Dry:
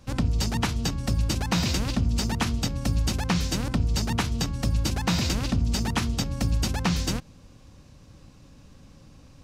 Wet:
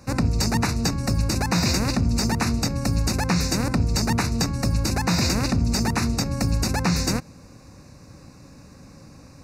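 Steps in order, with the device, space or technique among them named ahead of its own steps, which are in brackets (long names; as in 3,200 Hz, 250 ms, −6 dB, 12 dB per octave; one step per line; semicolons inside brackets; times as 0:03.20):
PA system with an anti-feedback notch (high-pass filter 110 Hz 6 dB per octave; Butterworth band-reject 3,200 Hz, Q 2.4; brickwall limiter −19 dBFS, peak gain reduction 6 dB)
level +7.5 dB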